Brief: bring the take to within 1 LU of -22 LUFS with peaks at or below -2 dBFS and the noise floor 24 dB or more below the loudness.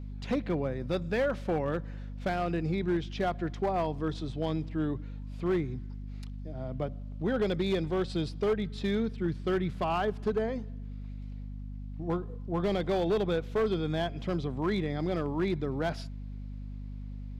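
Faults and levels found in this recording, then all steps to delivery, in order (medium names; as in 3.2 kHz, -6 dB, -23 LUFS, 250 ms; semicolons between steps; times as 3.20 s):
clipped samples 1.4%; clipping level -22.5 dBFS; hum 50 Hz; highest harmonic 250 Hz; hum level -37 dBFS; loudness -31.5 LUFS; peak level -22.5 dBFS; loudness target -22.0 LUFS
-> clip repair -22.5 dBFS; hum notches 50/100/150/200/250 Hz; trim +9.5 dB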